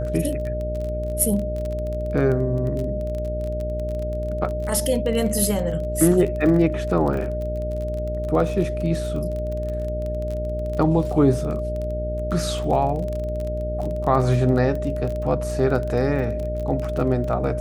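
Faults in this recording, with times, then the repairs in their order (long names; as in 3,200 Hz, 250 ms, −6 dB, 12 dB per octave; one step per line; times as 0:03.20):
mains buzz 60 Hz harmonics 9 −28 dBFS
surface crackle 24 per second −27 dBFS
whistle 610 Hz −27 dBFS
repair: click removal
hum removal 60 Hz, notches 9
notch filter 610 Hz, Q 30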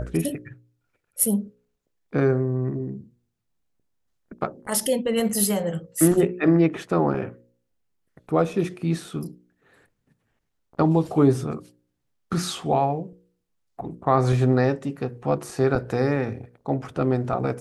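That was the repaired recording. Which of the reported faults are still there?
none of them is left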